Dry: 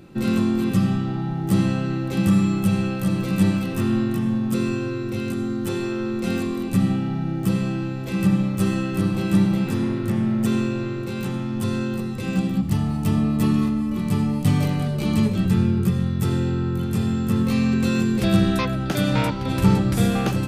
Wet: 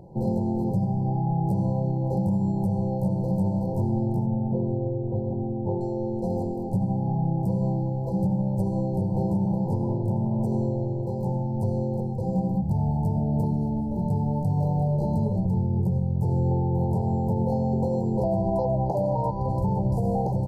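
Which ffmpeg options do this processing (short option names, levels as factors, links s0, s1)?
-filter_complex "[0:a]asettb=1/sr,asplit=3[s0][s1][s2];[s0]atrim=end=4.264[s3];[s1]atrim=start=4.26:end=5.81,asetpts=PTS-STARTPTS,afade=t=in:d=0.004:c=qsin,afade=t=out:st=1.546:d=0.004:c=qsin,lowpass=1900[s4];[s2]atrim=start=5.806[s5];[s3][s4]acrossfade=d=0.004:c1=hsin:c2=qsin[s6];[s6][s5]acrossfade=d=0.004:c1=qsin:c2=hsin,asettb=1/sr,asplit=3[s7][s8][s9];[s7]atrim=end=16.514[s10];[s8]atrim=start=16.51:end=19.17,asetpts=PTS-STARTPTS,afade=t=in:d=0.004:c=qsin,afade=t=out:st=2.656:d=0.004:c=qsin,equalizer=f=880:w=0.56:g=8[s11];[s9]atrim=start=19.166[s12];[s10][s11]acrossfade=d=0.004:c1=hsin:c2=qsin[s13];[s13][s12]acrossfade=d=0.004:c1=qsin:c2=hsin,afftfilt=real='re*(1-between(b*sr/4096,1000,4000))':imag='im*(1-between(b*sr/4096,1000,4000))':win_size=4096:overlap=0.75,firequalizer=gain_entry='entry(160,0);entry(260,-13);entry(470,2);entry(1300,6);entry(2700,-23);entry(4800,-20)':delay=0.05:min_phase=1,alimiter=limit=0.112:level=0:latency=1:release=117,volume=1.33"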